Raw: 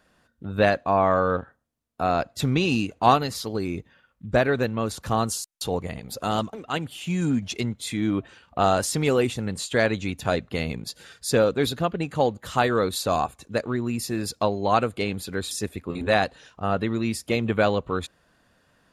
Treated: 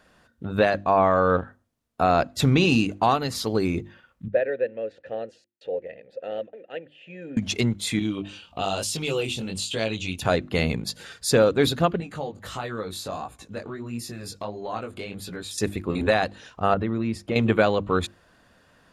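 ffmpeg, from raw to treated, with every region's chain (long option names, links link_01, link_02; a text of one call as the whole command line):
ffmpeg -i in.wav -filter_complex "[0:a]asettb=1/sr,asplit=3[link_01][link_02][link_03];[link_01]atrim=end=4.284[link_04];[link_02]atrim=start=4.28:end=7.37,asetpts=PTS-STARTPTS,afade=type=in:duration=0.004:curve=qsin,afade=type=out:start_time=3.086:duration=0.004:curve=qsin,asplit=3[link_05][link_06][link_07];[link_05]bandpass=frequency=530:width_type=q:width=8,volume=0dB[link_08];[link_06]bandpass=frequency=1840:width_type=q:width=8,volume=-6dB[link_09];[link_07]bandpass=frequency=2480:width_type=q:width=8,volume=-9dB[link_10];[link_08][link_09][link_10]amix=inputs=3:normalize=0,aemphasis=mode=reproduction:type=75fm[link_11];[link_03]atrim=start=7.366[link_12];[link_04][link_11]acrossfade=duration=0.004:curve1=hsin:curve2=qsin[link_13];[link_13][link_12]acrossfade=duration=0.004:curve1=qsin:curve2=hsin,asettb=1/sr,asplit=3[link_14][link_15][link_16];[link_14]atrim=end=7.994[link_17];[link_15]atrim=start=7.99:end=10.22,asetpts=PTS-STARTPTS,afade=type=in:duration=0.004:curve=qsin,afade=type=out:start_time=2.226:duration=0.004:curve=qsin,highshelf=frequency=2300:width_type=q:width=3:gain=6,acompressor=threshold=-31dB:ratio=2:attack=3.2:release=140:knee=1:detection=peak,flanger=delay=18:depth=5.6:speed=1.1[link_18];[link_16]atrim=start=10.216[link_19];[link_17][link_18]acrossfade=duration=0.004:curve1=hsin:curve2=qsin[link_20];[link_20][link_19]acrossfade=duration=0.004:curve1=qsin:curve2=hsin,asettb=1/sr,asplit=3[link_21][link_22][link_23];[link_21]atrim=end=12.004[link_24];[link_22]atrim=start=12:end=15.58,asetpts=PTS-STARTPTS,afade=type=in:duration=0.004:curve=qsin,afade=type=out:start_time=3.576:duration=0.004:curve=qsin,acompressor=threshold=-35dB:ratio=2.5:attack=3.2:release=140:knee=1:detection=peak,flanger=delay=17:depth=4.6:speed=1.5[link_25];[link_23]atrim=start=15.576[link_26];[link_24][link_25]acrossfade=duration=0.004:curve1=hsin:curve2=qsin[link_27];[link_27][link_26]acrossfade=duration=0.004:curve1=qsin:curve2=hsin,asettb=1/sr,asplit=3[link_28][link_29][link_30];[link_28]atrim=end=16.744[link_31];[link_29]atrim=start=16.74:end=17.36,asetpts=PTS-STARTPTS,afade=type=in:duration=0.004:curve=qsin,afade=type=out:start_time=0.616:duration=0.004:curve=qsin,lowpass=frequency=1500:poles=1,acompressor=threshold=-28dB:ratio=2.5:attack=3.2:release=140:knee=1:detection=peak[link_32];[link_30]atrim=start=17.356[link_33];[link_31][link_32]acrossfade=duration=0.004:curve1=hsin:curve2=qsin[link_34];[link_34][link_33]acrossfade=duration=0.004:curve1=qsin:curve2=hsin,highshelf=frequency=8400:gain=-4.5,bandreject=frequency=50:width_type=h:width=6,bandreject=frequency=100:width_type=h:width=6,bandreject=frequency=150:width_type=h:width=6,bandreject=frequency=200:width_type=h:width=6,bandreject=frequency=250:width_type=h:width=6,bandreject=frequency=300:width_type=h:width=6,bandreject=frequency=350:width_type=h:width=6,alimiter=limit=-13.5dB:level=0:latency=1:release=336,volume=5dB" out.wav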